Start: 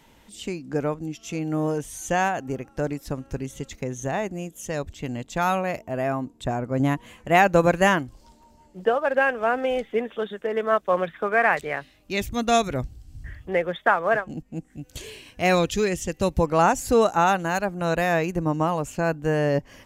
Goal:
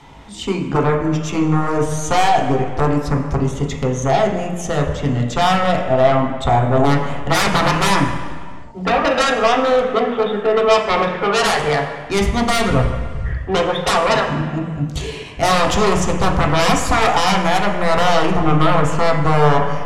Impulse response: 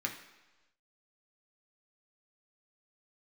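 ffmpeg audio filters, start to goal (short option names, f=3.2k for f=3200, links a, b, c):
-filter_complex "[0:a]adynamicsmooth=sensitivity=4.5:basefreq=7.3k,aeval=exprs='0.596*sin(PI/2*7.08*val(0)/0.596)':c=same[a];[1:a]atrim=start_sample=2205,afade=t=out:st=0.44:d=0.01,atrim=end_sample=19845,asetrate=23373,aresample=44100[b];[a][b]afir=irnorm=-1:irlink=0,volume=-13.5dB"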